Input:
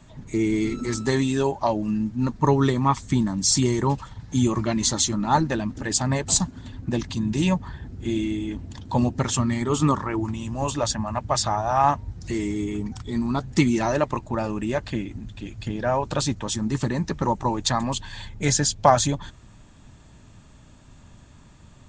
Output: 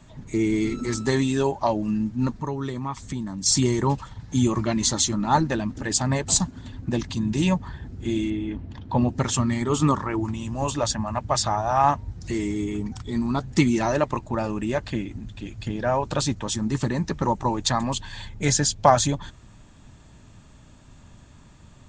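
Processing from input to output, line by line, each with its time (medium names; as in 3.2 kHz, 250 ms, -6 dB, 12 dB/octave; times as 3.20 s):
2.42–3.46 s: compression 2:1, threshold -33 dBFS
8.30–9.09 s: low-pass 3 kHz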